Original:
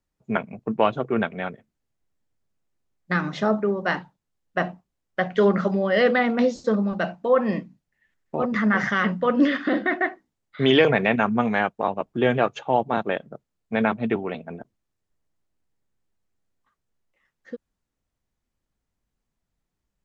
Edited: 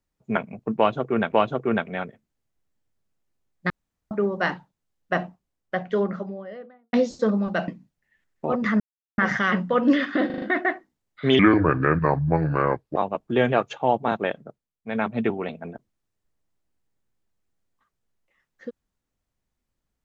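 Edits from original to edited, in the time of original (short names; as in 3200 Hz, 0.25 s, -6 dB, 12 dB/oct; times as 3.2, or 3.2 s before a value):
0.77–1.32 loop, 2 plays
3.15–3.56 room tone
4.66–6.38 studio fade out
7.13–7.58 cut
8.7 insert silence 0.38 s
9.78 stutter 0.04 s, 5 plays
10.75–11.82 speed 68%
13.24–14 dip -13.5 dB, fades 0.33 s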